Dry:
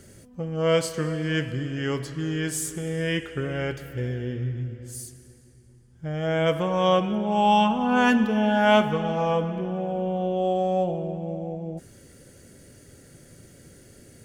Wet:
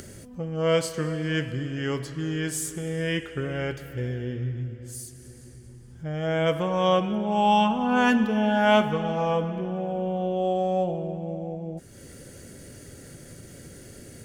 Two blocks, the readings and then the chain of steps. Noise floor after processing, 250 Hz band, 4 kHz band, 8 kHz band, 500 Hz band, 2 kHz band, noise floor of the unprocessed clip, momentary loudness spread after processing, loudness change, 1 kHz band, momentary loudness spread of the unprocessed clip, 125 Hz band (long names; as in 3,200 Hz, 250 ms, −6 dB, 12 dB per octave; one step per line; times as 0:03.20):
−47 dBFS, −1.0 dB, −1.0 dB, −0.5 dB, −1.0 dB, −1.0 dB, −52 dBFS, 23 LU, −1.0 dB, −1.0 dB, 14 LU, −1.0 dB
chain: upward compression, threshold −35 dBFS
level −1 dB